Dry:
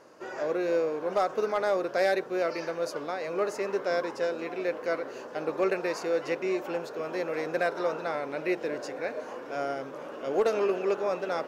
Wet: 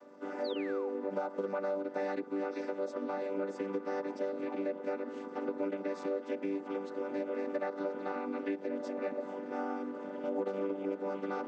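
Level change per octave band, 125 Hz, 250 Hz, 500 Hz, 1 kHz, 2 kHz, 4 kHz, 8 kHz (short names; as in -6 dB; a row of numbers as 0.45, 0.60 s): n/a, -1.0 dB, -7.0 dB, -8.0 dB, -11.0 dB, -11.0 dB, under -15 dB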